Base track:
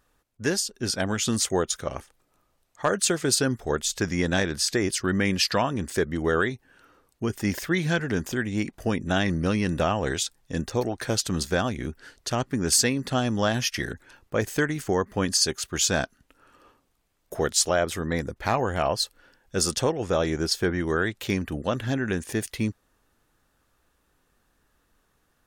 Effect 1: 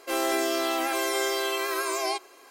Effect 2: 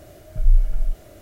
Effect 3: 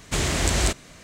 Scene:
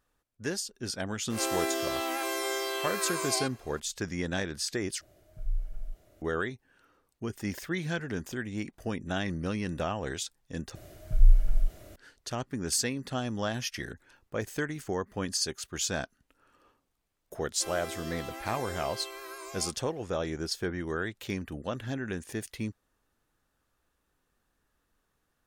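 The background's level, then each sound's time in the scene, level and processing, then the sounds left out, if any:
base track -8 dB
1.3 add 1 -5.5 dB + spectral swells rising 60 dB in 0.37 s
5.01 replace with 2 -16 dB
10.75 replace with 2 -3 dB + bell 550 Hz -3 dB 1.9 oct
17.53 add 1 -14.5 dB
not used: 3

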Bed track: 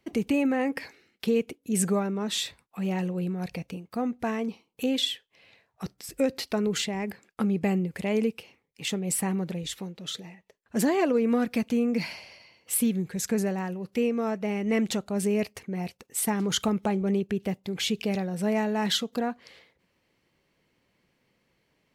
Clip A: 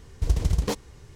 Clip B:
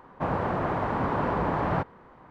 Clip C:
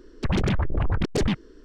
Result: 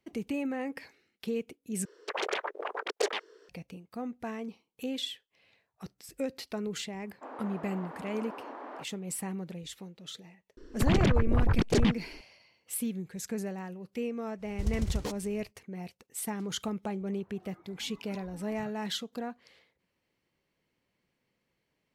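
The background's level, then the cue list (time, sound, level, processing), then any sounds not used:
bed track -8.5 dB
1.85 replace with C -0.5 dB + elliptic high-pass 430 Hz, stop band 80 dB
7.01 add B -15 dB + elliptic high-pass 250 Hz
10.57 add C -1.5 dB
14.37 add A -8.5 dB, fades 0.10 s
16.88 add B -17 dB + spectral noise reduction 21 dB

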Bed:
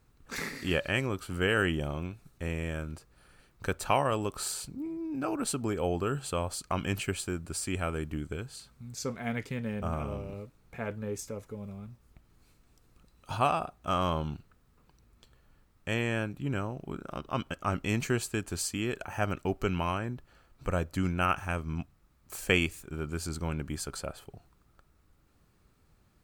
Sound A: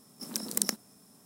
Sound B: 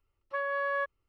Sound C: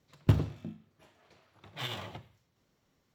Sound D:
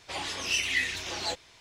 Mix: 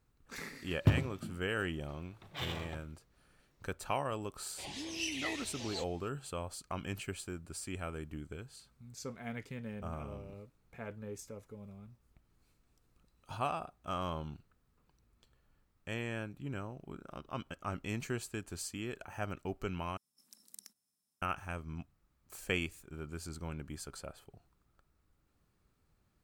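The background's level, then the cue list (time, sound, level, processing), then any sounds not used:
bed -8.5 dB
0.58 add C -2.5 dB
4.49 add D -9 dB + bell 1300 Hz -14.5 dB 0.68 oct
19.97 replace with A -17.5 dB + passive tone stack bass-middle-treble 5-5-5
not used: B

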